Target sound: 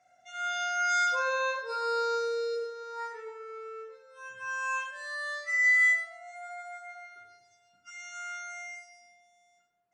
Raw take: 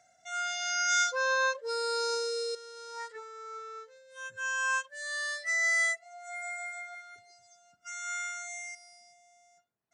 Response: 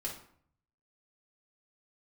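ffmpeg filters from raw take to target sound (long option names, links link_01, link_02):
-filter_complex "[0:a]bass=frequency=250:gain=-5,treble=frequency=4000:gain=-10[link_01];[1:a]atrim=start_sample=2205,afade=type=out:start_time=0.4:duration=0.01,atrim=end_sample=18081,asetrate=24255,aresample=44100[link_02];[link_01][link_02]afir=irnorm=-1:irlink=0,volume=-3.5dB"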